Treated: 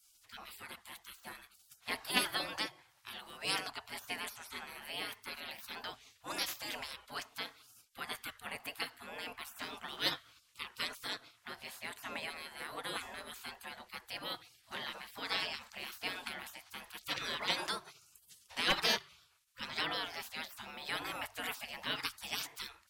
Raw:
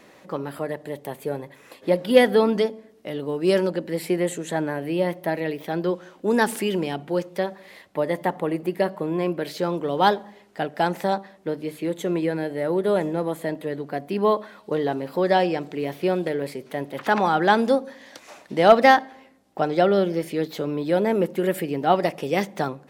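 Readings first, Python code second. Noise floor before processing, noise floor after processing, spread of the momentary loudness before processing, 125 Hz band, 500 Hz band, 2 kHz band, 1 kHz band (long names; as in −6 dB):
−52 dBFS, −68 dBFS, 13 LU, −25.5 dB, −27.5 dB, −10.0 dB, −19.5 dB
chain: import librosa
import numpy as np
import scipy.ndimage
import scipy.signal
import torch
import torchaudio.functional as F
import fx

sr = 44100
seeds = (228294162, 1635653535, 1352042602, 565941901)

y = fx.hum_notches(x, sr, base_hz=50, count=6)
y = fx.spec_gate(y, sr, threshold_db=-25, keep='weak')
y = F.gain(torch.from_numpy(y), 1.0).numpy()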